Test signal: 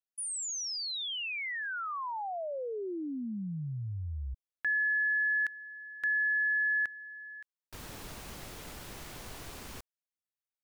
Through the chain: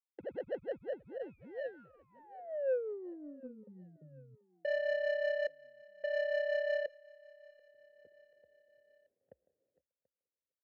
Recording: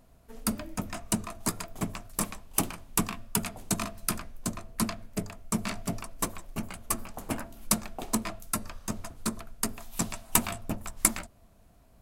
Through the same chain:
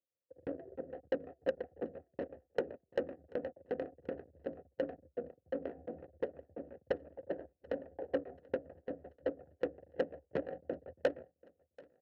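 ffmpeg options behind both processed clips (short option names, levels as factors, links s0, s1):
-filter_complex "[0:a]bandreject=f=50:t=h:w=6,bandreject=f=100:t=h:w=6,bandreject=f=150:t=h:w=6,bandreject=f=200:t=h:w=6,agate=range=0.0251:threshold=0.00794:ratio=16:release=29:detection=rms,equalizer=f=3600:t=o:w=0.47:g=-3.5,afreqshift=61,acrossover=split=1600[s0][s1];[s1]acrusher=samples=37:mix=1:aa=0.000001[s2];[s0][s2]amix=inputs=2:normalize=0,tremolo=f=5.5:d=0.37,aeval=exprs='0.335*(cos(1*acos(clip(val(0)/0.335,-1,1)))-cos(1*PI/2))+0.0237*(cos(8*acos(clip(val(0)/0.335,-1,1)))-cos(8*PI/2))':c=same,asplit=3[s3][s4][s5];[s3]bandpass=f=530:t=q:w=8,volume=1[s6];[s4]bandpass=f=1840:t=q:w=8,volume=0.501[s7];[s5]bandpass=f=2480:t=q:w=8,volume=0.355[s8];[s6][s7][s8]amix=inputs=3:normalize=0,asoftclip=type=tanh:threshold=0.0282,adynamicsmooth=sensitivity=3.5:basefreq=800,aecho=1:1:735|1470|2205:0.0631|0.0341|0.0184,volume=3.16"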